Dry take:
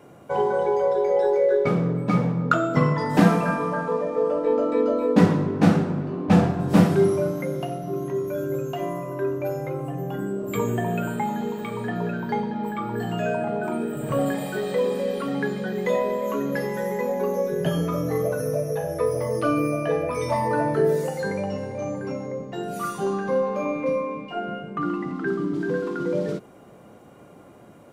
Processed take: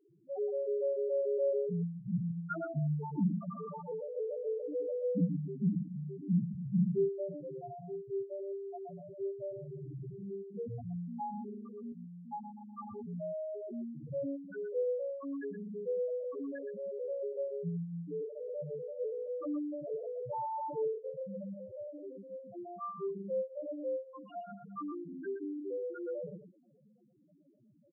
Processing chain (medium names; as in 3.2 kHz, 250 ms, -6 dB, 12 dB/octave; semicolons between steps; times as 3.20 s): loudest bins only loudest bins 1; 11.92–12.79 s: peaking EQ 120 Hz -10 dB 2.6 oct; delay 121 ms -9.5 dB; trim -6 dB